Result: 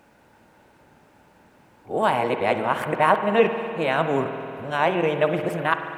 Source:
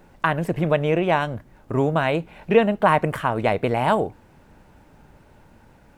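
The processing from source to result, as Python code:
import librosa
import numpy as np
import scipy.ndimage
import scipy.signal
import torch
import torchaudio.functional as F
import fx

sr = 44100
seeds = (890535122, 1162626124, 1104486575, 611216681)

y = x[::-1].copy()
y = fx.highpass(y, sr, hz=320.0, slope=6)
y = fx.rev_spring(y, sr, rt60_s=2.9, pass_ms=(49,), chirp_ms=25, drr_db=7.0)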